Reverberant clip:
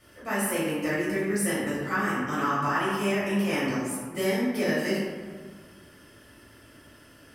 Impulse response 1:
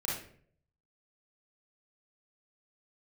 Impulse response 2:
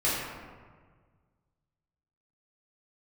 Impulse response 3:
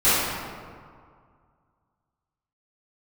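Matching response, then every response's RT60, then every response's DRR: 2; 0.55, 1.6, 2.1 s; -5.5, -9.0, -16.5 dB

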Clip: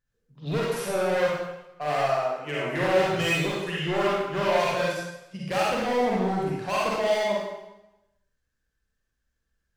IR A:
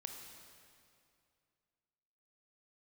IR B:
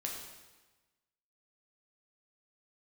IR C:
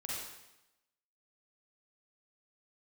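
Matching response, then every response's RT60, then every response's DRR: C; 2.4, 1.2, 0.90 s; 3.0, -1.5, -6.0 dB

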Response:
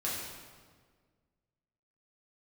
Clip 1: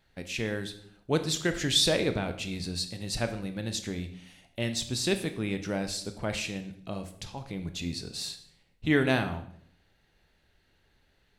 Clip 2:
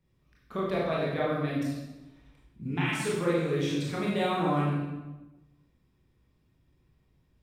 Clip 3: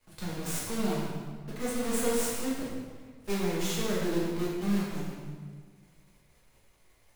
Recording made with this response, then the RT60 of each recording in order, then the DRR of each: 3; 0.65, 1.1, 1.7 s; 8.0, -6.0, -7.0 dB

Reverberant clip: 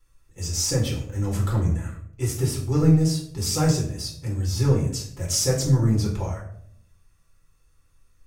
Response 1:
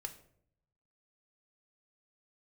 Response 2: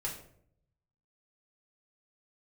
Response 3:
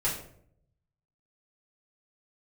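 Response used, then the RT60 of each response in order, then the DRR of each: 2; 0.65, 0.65, 0.65 s; 6.0, -3.5, -7.5 dB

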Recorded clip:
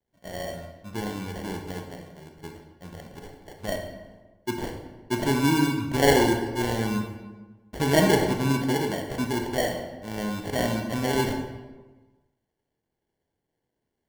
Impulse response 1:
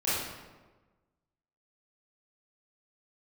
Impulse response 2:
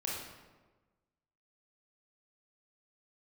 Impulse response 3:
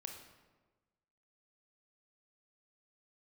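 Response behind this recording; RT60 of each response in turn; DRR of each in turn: 3; 1.3, 1.3, 1.3 s; -11.5, -4.5, 3.0 dB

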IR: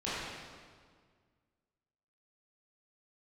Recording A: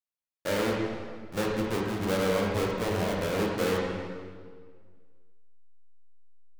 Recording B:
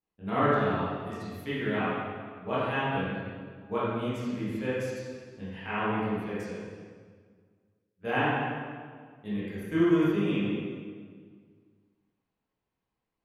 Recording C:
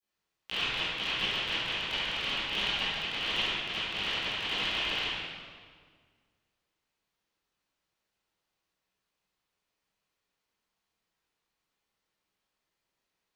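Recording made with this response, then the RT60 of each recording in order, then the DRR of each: B; 1.8, 1.8, 1.8 s; -2.5, -11.5, -17.5 dB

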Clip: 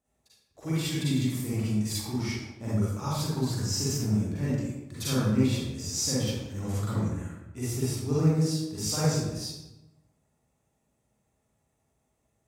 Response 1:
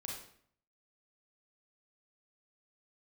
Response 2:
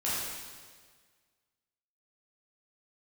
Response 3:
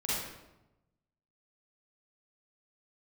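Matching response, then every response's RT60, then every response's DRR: 3; 0.60, 1.6, 0.95 s; -2.0, -9.5, -9.0 dB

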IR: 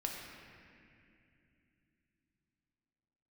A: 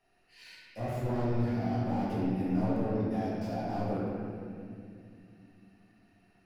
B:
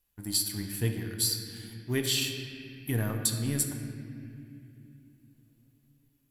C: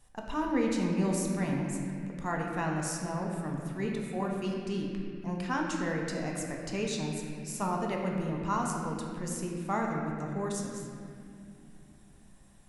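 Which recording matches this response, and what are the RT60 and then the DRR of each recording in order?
C; 2.6, 2.7, 2.6 s; -9.0, 3.5, -1.0 dB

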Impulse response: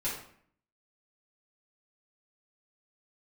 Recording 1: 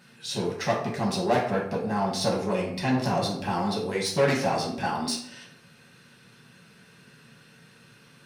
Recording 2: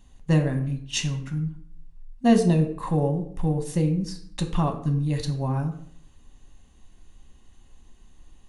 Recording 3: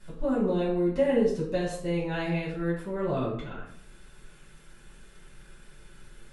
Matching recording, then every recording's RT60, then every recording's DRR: 3; 0.60, 0.60, 0.60 s; -3.5, 4.0, -9.5 dB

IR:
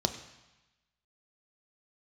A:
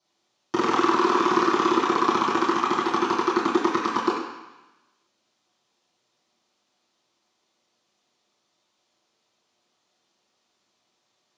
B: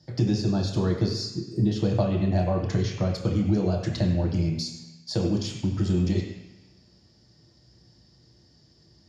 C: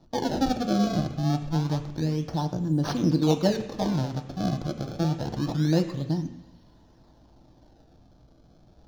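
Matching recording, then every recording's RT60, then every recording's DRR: C; 1.0, 1.0, 1.0 s; -10.5, -1.0, 6.5 dB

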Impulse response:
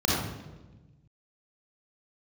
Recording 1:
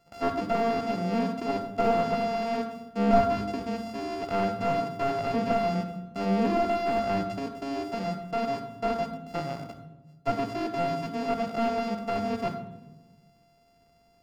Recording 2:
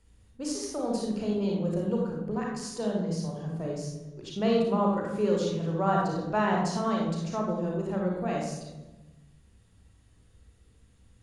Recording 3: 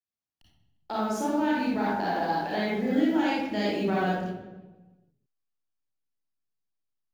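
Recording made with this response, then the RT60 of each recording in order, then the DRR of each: 3; 1.2, 1.2, 1.2 s; 7.5, -2.0, -6.0 dB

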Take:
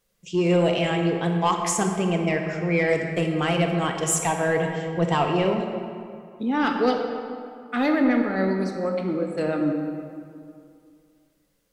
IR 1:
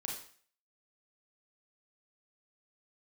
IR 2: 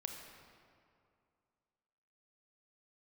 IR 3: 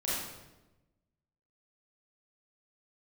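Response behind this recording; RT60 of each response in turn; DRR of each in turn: 2; 0.45, 2.4, 1.1 s; -1.5, 3.0, -9.0 dB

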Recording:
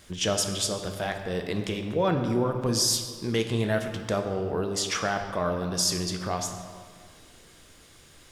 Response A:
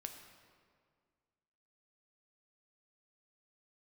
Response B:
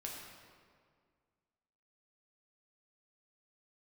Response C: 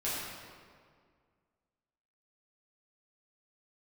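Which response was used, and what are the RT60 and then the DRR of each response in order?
A; 2.0, 2.0, 2.0 s; 4.5, -2.5, -10.0 dB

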